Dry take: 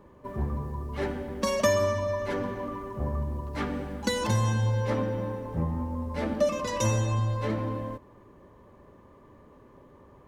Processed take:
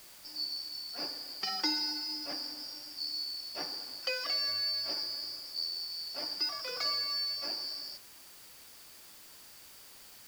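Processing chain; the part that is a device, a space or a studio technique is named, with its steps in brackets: split-band scrambled radio (four-band scrambler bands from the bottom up 2341; BPF 340–3000 Hz; white noise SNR 16 dB); 4–4.47 HPF 240 Hz 6 dB/oct

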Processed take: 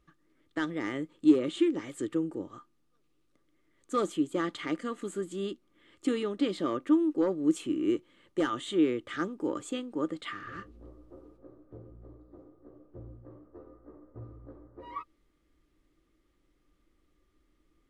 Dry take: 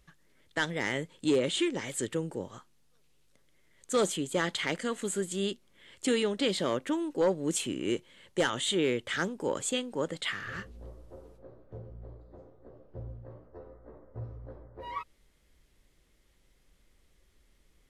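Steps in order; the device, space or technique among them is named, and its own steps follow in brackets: inside a helmet (high shelf 4200 Hz -8 dB; small resonant body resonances 310/1200 Hz, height 15 dB, ringing for 55 ms); gain -6 dB

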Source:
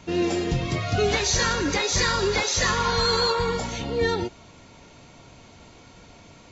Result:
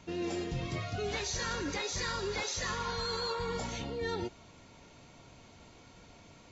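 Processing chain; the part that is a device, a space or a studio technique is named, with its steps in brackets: compression on the reversed sound (reverse; compressor, threshold -25 dBFS, peak gain reduction 7.5 dB; reverse); gain -7 dB

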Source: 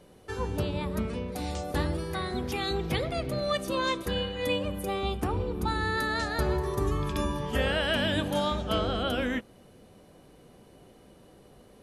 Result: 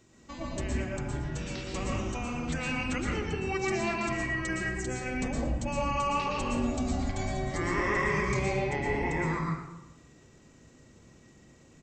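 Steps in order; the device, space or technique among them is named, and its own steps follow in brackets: tilt +2.5 dB/oct; monster voice (pitch shift -7.5 st; low shelf 220 Hz +8 dB; echo 0.107 s -13 dB; reverb RT60 0.95 s, pre-delay 0.111 s, DRR -2 dB); gain -6.5 dB

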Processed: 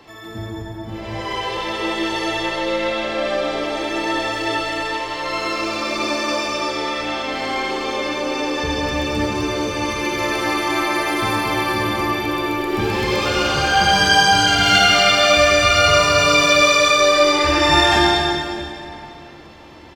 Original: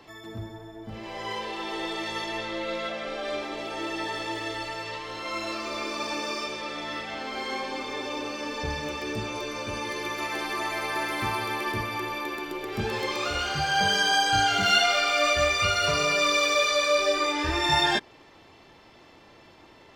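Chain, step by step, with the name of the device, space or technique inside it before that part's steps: cave (echo 0.234 s -9 dB; reverb RT60 2.9 s, pre-delay 50 ms, DRR -2 dB); gain +5 dB

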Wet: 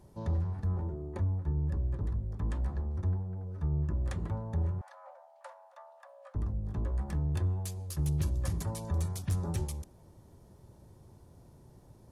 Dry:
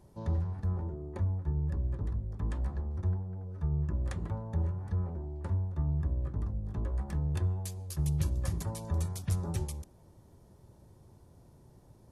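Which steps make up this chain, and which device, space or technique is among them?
4.81–6.35 Chebyshev high-pass 530 Hz, order 10; saturation between pre-emphasis and de-emphasis (high shelf 3400 Hz +10 dB; soft clip -23.5 dBFS, distortion -20 dB; high shelf 3400 Hz -10 dB); gain +1.5 dB

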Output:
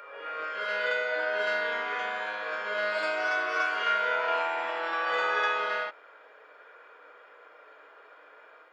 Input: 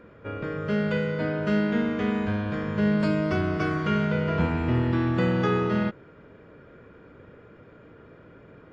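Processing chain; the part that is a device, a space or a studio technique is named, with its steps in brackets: ghost voice (reverse; reverb RT60 1.2 s, pre-delay 34 ms, DRR -2.5 dB; reverse; HPF 670 Hz 24 dB/oct)

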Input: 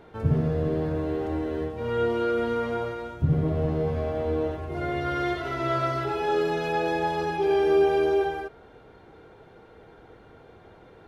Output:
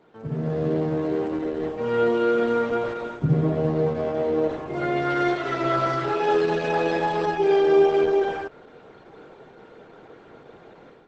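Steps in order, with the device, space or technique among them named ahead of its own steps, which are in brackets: video call (HPF 140 Hz 24 dB/oct; AGC gain up to 11.5 dB; gain -6 dB; Opus 12 kbps 48000 Hz)

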